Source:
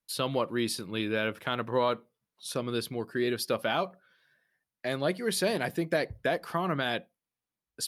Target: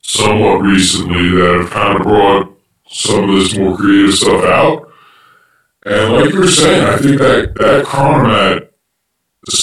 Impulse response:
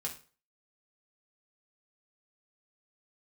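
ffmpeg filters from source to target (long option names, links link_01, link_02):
-af "afftfilt=real='re':imag='-im':win_size=4096:overlap=0.75,apsyclip=30dB,asetrate=36074,aresample=44100,volume=-2.5dB"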